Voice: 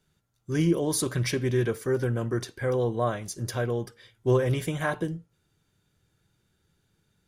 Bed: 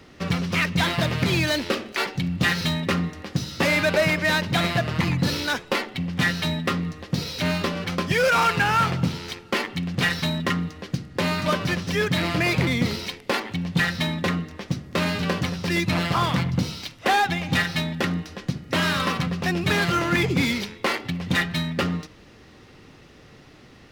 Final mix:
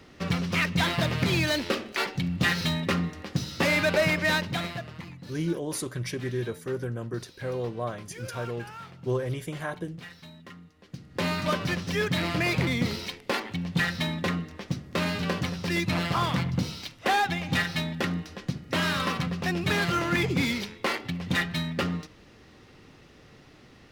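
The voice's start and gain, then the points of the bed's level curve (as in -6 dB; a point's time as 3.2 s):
4.80 s, -5.5 dB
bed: 4.34 s -3 dB
5.21 s -22.5 dB
10.72 s -22.5 dB
11.22 s -4 dB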